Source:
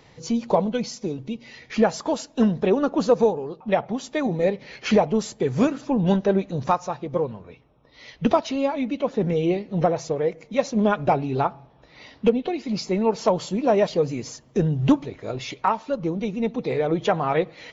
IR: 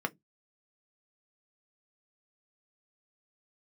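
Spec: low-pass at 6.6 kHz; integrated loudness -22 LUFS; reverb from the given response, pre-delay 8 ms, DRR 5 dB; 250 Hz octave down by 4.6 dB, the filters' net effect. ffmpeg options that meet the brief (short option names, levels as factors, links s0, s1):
-filter_complex "[0:a]lowpass=6600,equalizer=f=250:t=o:g=-6,asplit=2[s0][s1];[1:a]atrim=start_sample=2205,adelay=8[s2];[s1][s2]afir=irnorm=-1:irlink=0,volume=0.299[s3];[s0][s3]amix=inputs=2:normalize=0,volume=1.33"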